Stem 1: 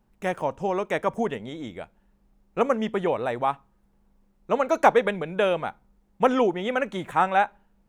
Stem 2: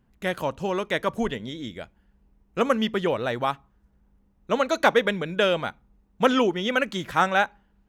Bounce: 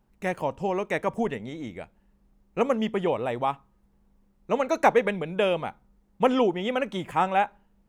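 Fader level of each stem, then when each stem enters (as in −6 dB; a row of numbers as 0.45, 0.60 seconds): −1.5, −13.0 decibels; 0.00, 0.00 seconds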